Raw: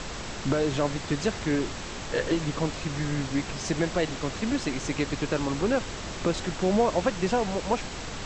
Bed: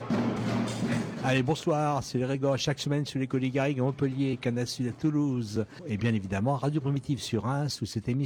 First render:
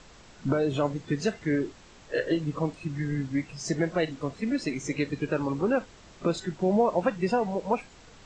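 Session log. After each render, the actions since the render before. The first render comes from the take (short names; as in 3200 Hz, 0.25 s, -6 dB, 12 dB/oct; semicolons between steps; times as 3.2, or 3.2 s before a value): noise print and reduce 16 dB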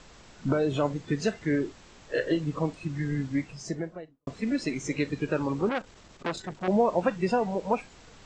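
3.33–4.27 studio fade out; 5.69–6.68 core saturation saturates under 1700 Hz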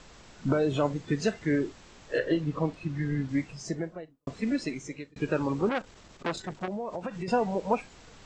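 2.18–3.29 air absorption 79 m; 4.5–5.16 fade out; 6.65–7.28 compressor 12:1, threshold -30 dBFS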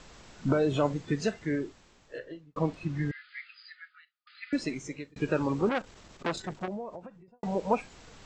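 0.92–2.56 fade out; 3.11–4.53 brick-wall FIR band-pass 1200–5000 Hz; 6.45–7.43 studio fade out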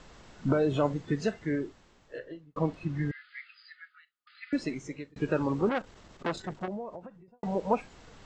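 high shelf 3800 Hz -6.5 dB; notch 2400 Hz, Q 23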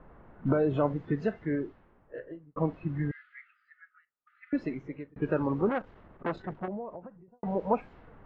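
low-pass opened by the level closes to 1300 Hz, open at -26 dBFS; LPF 1900 Hz 12 dB/oct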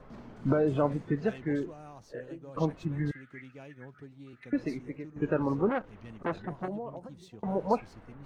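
add bed -21 dB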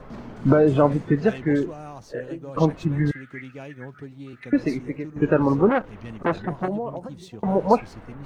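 gain +9.5 dB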